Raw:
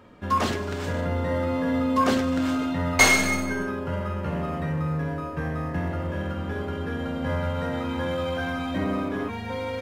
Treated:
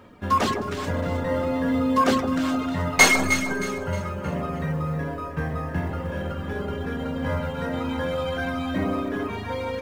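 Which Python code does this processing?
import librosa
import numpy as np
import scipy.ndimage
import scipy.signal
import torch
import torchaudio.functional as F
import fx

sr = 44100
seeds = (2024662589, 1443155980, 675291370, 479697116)

y = fx.dereverb_blind(x, sr, rt60_s=0.87)
y = fx.quant_companded(y, sr, bits=8)
y = fx.echo_alternate(y, sr, ms=156, hz=1200.0, feedback_pct=63, wet_db=-7.0)
y = y * librosa.db_to_amplitude(2.5)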